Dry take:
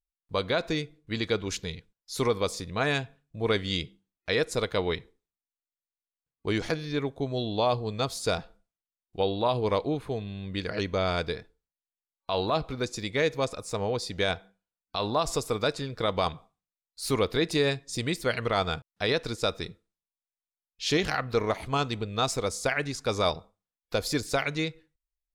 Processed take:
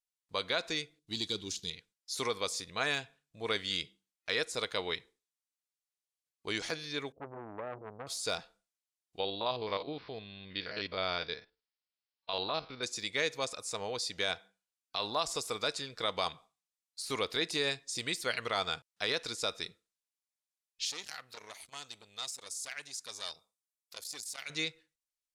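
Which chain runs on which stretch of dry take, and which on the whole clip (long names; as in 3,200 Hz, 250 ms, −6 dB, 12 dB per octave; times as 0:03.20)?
0:00.99–0:01.70: flat-topped bell 1,100 Hz −15 dB 2.6 octaves + leveller curve on the samples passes 1
0:07.12–0:08.07: inverse Chebyshev low-pass filter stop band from 1,400 Hz, stop band 50 dB + saturating transformer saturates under 750 Hz
0:09.20–0:12.83: spectrum averaged block by block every 50 ms + bad sample-rate conversion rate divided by 4×, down none, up filtered
0:20.85–0:24.50: first-order pre-emphasis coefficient 0.8 + saturating transformer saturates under 2,300 Hz
whole clip: de-essing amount 80%; low-pass filter 9,100 Hz 12 dB per octave; spectral tilt +3.5 dB per octave; level −5.5 dB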